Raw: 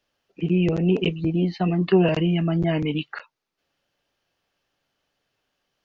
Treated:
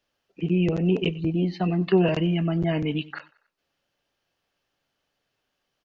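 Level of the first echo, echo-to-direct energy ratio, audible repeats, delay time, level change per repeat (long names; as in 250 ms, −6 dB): −22.0 dB, −21.0 dB, 2, 94 ms, −6.5 dB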